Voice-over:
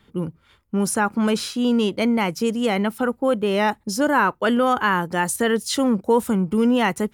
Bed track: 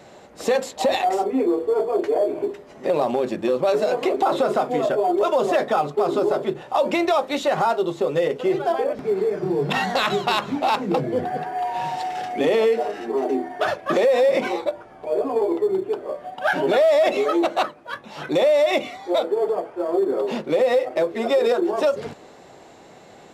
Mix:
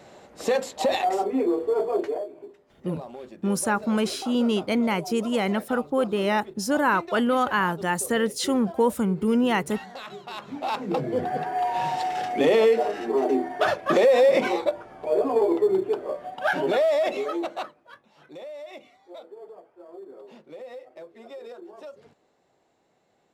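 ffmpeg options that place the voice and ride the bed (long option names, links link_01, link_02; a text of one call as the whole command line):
ffmpeg -i stem1.wav -i stem2.wav -filter_complex "[0:a]adelay=2700,volume=-3.5dB[link_01];[1:a]volume=15dB,afade=type=out:start_time=1.97:duration=0.32:silence=0.177828,afade=type=in:start_time=10.28:duration=1.26:silence=0.125893,afade=type=out:start_time=15.75:duration=2.37:silence=0.0794328[link_02];[link_01][link_02]amix=inputs=2:normalize=0" out.wav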